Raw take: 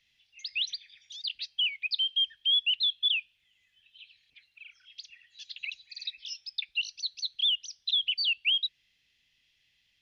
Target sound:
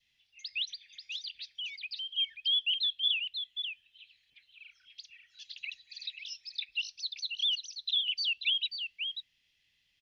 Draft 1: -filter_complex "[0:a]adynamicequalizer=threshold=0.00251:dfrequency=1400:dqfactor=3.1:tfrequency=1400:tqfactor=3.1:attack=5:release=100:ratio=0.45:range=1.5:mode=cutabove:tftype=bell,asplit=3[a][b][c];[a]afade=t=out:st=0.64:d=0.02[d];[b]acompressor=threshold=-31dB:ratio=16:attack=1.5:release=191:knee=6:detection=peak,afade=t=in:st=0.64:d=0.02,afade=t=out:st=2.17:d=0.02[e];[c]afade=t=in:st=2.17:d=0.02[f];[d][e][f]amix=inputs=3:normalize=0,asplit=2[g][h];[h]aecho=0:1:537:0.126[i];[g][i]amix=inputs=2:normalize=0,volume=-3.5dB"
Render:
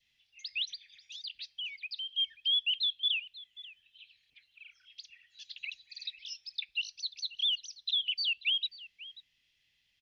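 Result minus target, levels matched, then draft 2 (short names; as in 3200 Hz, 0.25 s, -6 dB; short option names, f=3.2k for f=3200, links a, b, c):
echo-to-direct -11.5 dB
-filter_complex "[0:a]adynamicequalizer=threshold=0.00251:dfrequency=1400:dqfactor=3.1:tfrequency=1400:tqfactor=3.1:attack=5:release=100:ratio=0.45:range=1.5:mode=cutabove:tftype=bell,asplit=3[a][b][c];[a]afade=t=out:st=0.64:d=0.02[d];[b]acompressor=threshold=-31dB:ratio=16:attack=1.5:release=191:knee=6:detection=peak,afade=t=in:st=0.64:d=0.02,afade=t=out:st=2.17:d=0.02[e];[c]afade=t=in:st=2.17:d=0.02[f];[d][e][f]amix=inputs=3:normalize=0,asplit=2[g][h];[h]aecho=0:1:537:0.473[i];[g][i]amix=inputs=2:normalize=0,volume=-3.5dB"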